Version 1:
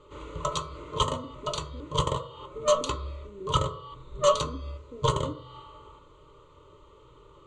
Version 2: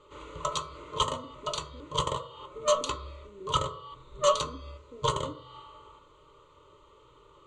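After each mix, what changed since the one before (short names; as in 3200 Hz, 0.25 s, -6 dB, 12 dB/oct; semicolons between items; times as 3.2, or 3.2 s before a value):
master: add low shelf 420 Hz -7.5 dB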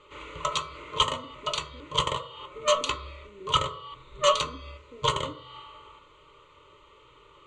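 background: add bell 2300 Hz +11 dB 1.1 oct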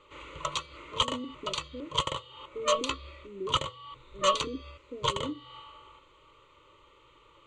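speech +9.0 dB; reverb: off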